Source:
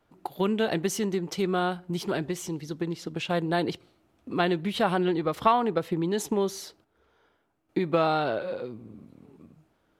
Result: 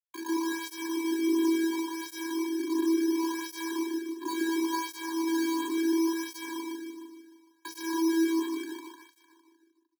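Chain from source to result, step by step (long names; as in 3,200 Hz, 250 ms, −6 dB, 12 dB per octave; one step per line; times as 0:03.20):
every bin's largest magnitude spread in time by 240 ms
low-pass that shuts in the quiet parts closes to 440 Hz, open at −18.5 dBFS
downward compressor 2 to 1, threshold −26 dBFS, peak gain reduction 7.5 dB
bit reduction 4 bits
frequency shifter +220 Hz
channel vocoder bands 16, square 328 Hz
soft clipping −21.5 dBFS, distortion −16 dB
double-tracking delay 40 ms −12.5 dB
repeating echo 152 ms, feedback 56%, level −3 dB
bad sample-rate conversion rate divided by 8×, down filtered, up hold
through-zero flanger with one copy inverted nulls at 0.71 Hz, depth 1.4 ms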